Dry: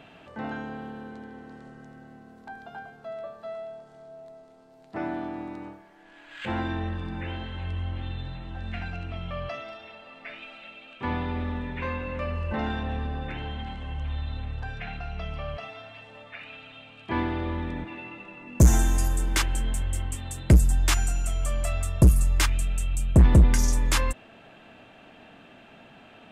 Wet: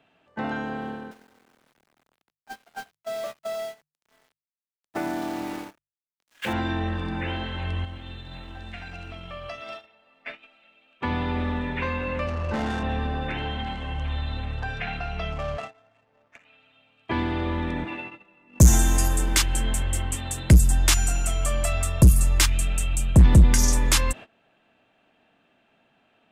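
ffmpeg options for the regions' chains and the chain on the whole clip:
-filter_complex "[0:a]asettb=1/sr,asplit=3[a][b][c];[a]atrim=end=1.114[d];[b]atrim=start=1.11:end=6.53,asetpts=PTS-STARTPTS,afade=t=in:d=0.004:c=qsin,afade=t=out:st=5.416:d=0.004:c=qsin,equalizer=f=64:t=o:w=1.5:g=-6,aeval=exprs='val(0)*gte(abs(val(0)),0.00841)':c=same,bandreject=f=50:t=h:w=6,bandreject=f=100:t=h:w=6,bandreject=f=150:t=h:w=6[e];[c]atrim=start=6.526[f];[d][e]acrossfade=d=0.004:c1=hsin:c2=qsin[g];[g][f]acrossfade=d=0.004:c1=qsin:c2=hsin,asettb=1/sr,asplit=3[h][i][j];[h]atrim=end=7.844[k];[i]atrim=start=7.84:end=9.86,asetpts=PTS-STARTPTS,afade=t=in:d=0.004:c=qsin,afade=t=out:st=2.016:d=0.004:c=qsin,aemphasis=mode=production:type=50kf,acompressor=threshold=-36dB:ratio=8:attack=3.2:release=140:knee=1:detection=peak,aecho=1:1:118:0.316,atrim=end_sample=89082[l];[j]atrim=start=9.856[m];[k][l]acrossfade=d=0.004:c1=hsin:c2=qsin[n];[n][m]acrossfade=d=0.004:c1=qsin:c2=hsin,asettb=1/sr,asplit=3[o][p][q];[o]atrim=end=12.274[r];[p]atrim=start=12.27:end=12.83,asetpts=PTS-STARTPTS,afade=t=in:d=0.004:c=qsin,afade=t=out:st=0.556:d=0.004:c=qsin,highpass=46,aeval=exprs='clip(val(0),-1,0.0376)':c=same,adynamicsmooth=sensitivity=7:basefreq=1.3k[s];[q]atrim=start=12.826[t];[r][s]acrossfade=d=0.004:c1=hsin:c2=qsin[u];[u][t]acrossfade=d=0.004:c1=qsin:c2=hsin,asettb=1/sr,asplit=3[v][w][x];[v]atrim=end=15.324[y];[w]atrim=start=15.32:end=16.45,asetpts=PTS-STARTPTS,afade=t=in:d=0.004:c=qsin,afade=t=out:st=1.126:d=0.004:c=qsin,aeval=exprs='val(0)*gte(abs(val(0)),0.00447)':c=same,adynamicsmooth=sensitivity=7.5:basefreq=1.1k[z];[x]atrim=start=16.446[aa];[y][z]acrossfade=d=0.004:c1=hsin:c2=qsin[ab];[ab][aa]acrossfade=d=0.004:c1=qsin:c2=hsin,agate=range=-20dB:threshold=-39dB:ratio=16:detection=peak,lowshelf=f=190:g=-5.5,acrossover=split=230|3000[ac][ad][ae];[ad]acompressor=threshold=-34dB:ratio=6[af];[ac][af][ae]amix=inputs=3:normalize=0,volume=7dB"

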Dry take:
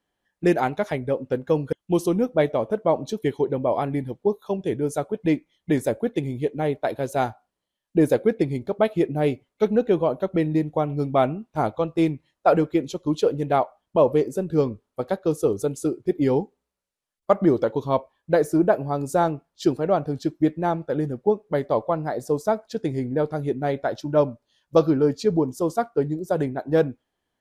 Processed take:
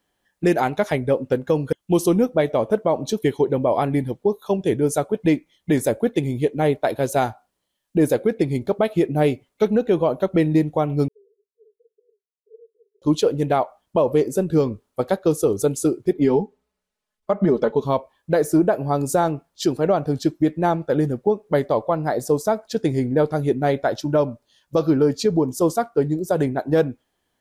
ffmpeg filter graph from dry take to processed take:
-filter_complex "[0:a]asettb=1/sr,asplit=3[a][b][c];[a]atrim=end=11.084[d];[b]atrim=start=11.08:end=13.02,asetpts=PTS-STARTPTS,afade=t=in:d=0.004:c=qsin,afade=t=out:st=1.936:d=0.004:c=qsin,asuperpass=centerf=430:order=12:qfactor=5.5,aderivative[e];[c]atrim=start=13.016[f];[d][e]acrossfade=d=0.004:c1=hsin:c2=qsin[g];[g][f]acrossfade=d=0.004:c1=qsin:c2=hsin,asettb=1/sr,asplit=3[h][i][j];[h]atrim=end=16.134[k];[i]atrim=start=16.13:end=17.85,asetpts=PTS-STARTPTS,afade=t=in:d=0.004:c=qsin,afade=t=out:st=1.716:d=0.004:c=qsin,lowpass=f=2.8k:p=1,aecho=1:1:4.7:0.69,atrim=end_sample=75852[l];[j]atrim=start=17.846[m];[k][l]acrossfade=d=0.004:c1=hsin:c2=qsin[n];[n][m]acrossfade=d=0.004:c1=qsin:c2=hsin,alimiter=limit=-14dB:level=0:latency=1:release=179,highshelf=f=5.3k:g=5.5,volume=5dB"

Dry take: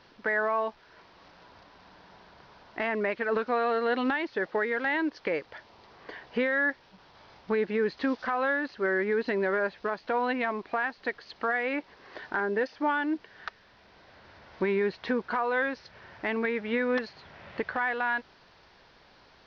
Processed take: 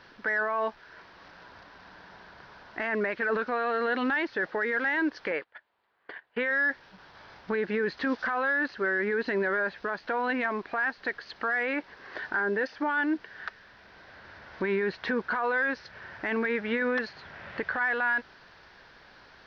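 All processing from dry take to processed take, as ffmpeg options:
-filter_complex "[0:a]asettb=1/sr,asplit=3[a][b][c];[a]atrim=end=5.314[d];[b]atrim=start=5.31:end=6.51,asetpts=PTS-STARTPTS,afade=t=in:d=0.004:c=qsin,afade=t=out:st=1.196:d=0.004:c=qsin,agate=range=-22dB:threshold=-43dB:ratio=16:release=100:detection=peak,lowpass=f=3.8k:w=0.5412,lowpass=f=3.8k:w=1.3066,lowshelf=f=280:g=-11[e];[c]atrim=start=6.506[f];[d][e]acrossfade=d=0.004:c1=hsin:c2=qsin[g];[g][f]acrossfade=d=0.004:c1=qsin:c2=hsin,equalizer=f=1.6k:w=2.5:g=7.5,acontrast=68,alimiter=limit=-15dB:level=0:latency=1:release=15,volume=-5dB"

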